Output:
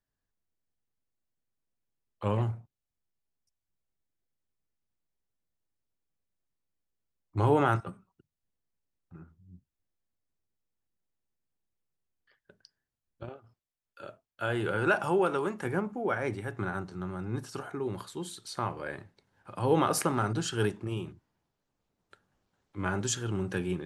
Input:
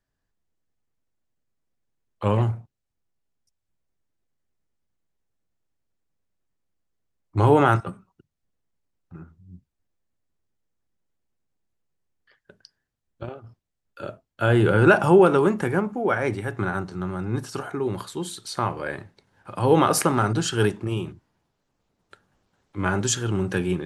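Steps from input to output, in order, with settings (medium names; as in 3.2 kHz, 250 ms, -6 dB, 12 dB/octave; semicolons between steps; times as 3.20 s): 13.36–15.65 s: bass shelf 420 Hz -8.5 dB; trim -7.5 dB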